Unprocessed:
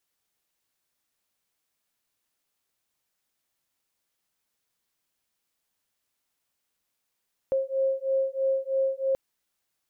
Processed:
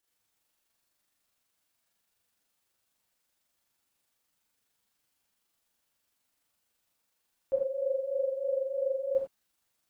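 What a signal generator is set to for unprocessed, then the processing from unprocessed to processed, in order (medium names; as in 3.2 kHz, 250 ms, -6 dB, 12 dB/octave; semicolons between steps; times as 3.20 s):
beating tones 534 Hz, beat 3.1 Hz, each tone -26.5 dBFS 1.63 s
AM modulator 24 Hz, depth 60%; gated-style reverb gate 130 ms flat, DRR -3.5 dB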